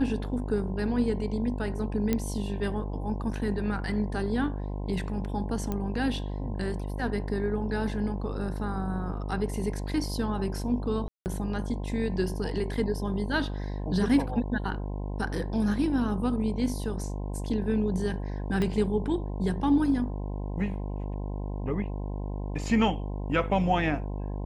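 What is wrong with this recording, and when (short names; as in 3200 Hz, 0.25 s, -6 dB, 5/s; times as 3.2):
buzz 50 Hz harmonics 21 -33 dBFS
2.13 pop -12 dBFS
5.72 pop -18 dBFS
11.08–11.26 gap 0.179 s
18.62 pop -17 dBFS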